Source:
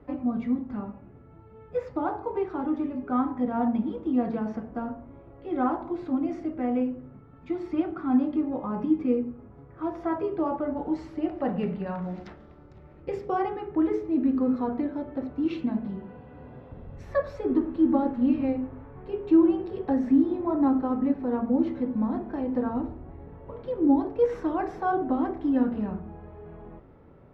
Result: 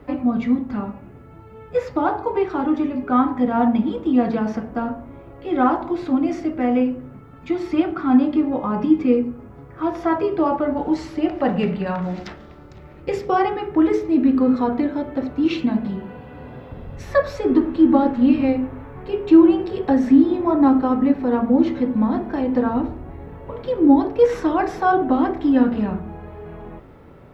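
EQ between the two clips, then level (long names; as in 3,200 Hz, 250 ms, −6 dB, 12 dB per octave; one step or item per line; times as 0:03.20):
high-shelf EQ 2,100 Hz +10.5 dB
+7.5 dB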